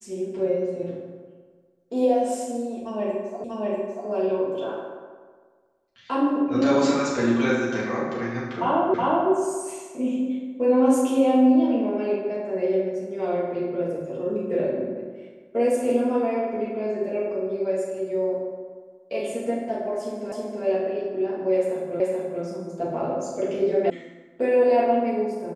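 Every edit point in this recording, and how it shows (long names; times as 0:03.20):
0:03.44: the same again, the last 0.64 s
0:08.94: the same again, the last 0.37 s
0:20.32: the same again, the last 0.32 s
0:22.00: the same again, the last 0.43 s
0:23.90: cut off before it has died away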